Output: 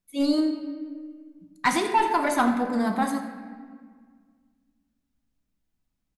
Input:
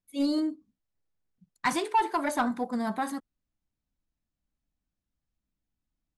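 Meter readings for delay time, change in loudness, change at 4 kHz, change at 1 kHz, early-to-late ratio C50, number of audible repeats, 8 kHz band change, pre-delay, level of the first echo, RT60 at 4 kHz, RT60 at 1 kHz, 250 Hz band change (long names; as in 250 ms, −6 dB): 84 ms, +4.5 dB, +5.0 dB, +4.5 dB, 6.5 dB, 1, +4.5 dB, 5 ms, −14.0 dB, 1.2 s, 1.7 s, +5.5 dB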